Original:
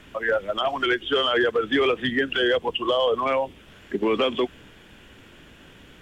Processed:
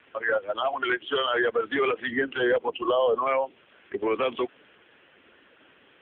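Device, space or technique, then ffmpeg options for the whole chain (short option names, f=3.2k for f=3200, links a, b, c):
telephone: -filter_complex "[0:a]asettb=1/sr,asplit=3[a][b][c];[a]atrim=end=2.104[d];[b]atrim=start=2.1:end=3.26,asetpts=PTS-STARTPTS,afade=t=in:d=0.004:c=qsin,afade=t=out:st=1.156:d=0.004:c=qsin,aemphasis=mode=reproduction:type=bsi[e];[c]atrim=start=3.256[f];[d][e]acrossfade=d=0.004:c1=hsin:c2=qsin[g];[g][f]acrossfade=d=0.004:c1=qsin:c2=hsin,highpass=380,lowpass=3.2k" -ar 8000 -c:a libopencore_amrnb -b:a 5900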